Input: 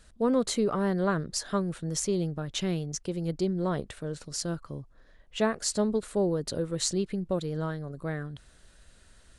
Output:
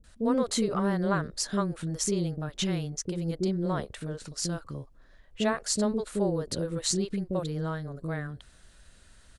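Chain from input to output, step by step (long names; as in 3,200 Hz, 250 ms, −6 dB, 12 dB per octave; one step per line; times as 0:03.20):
multiband delay without the direct sound lows, highs 40 ms, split 440 Hz
level +1 dB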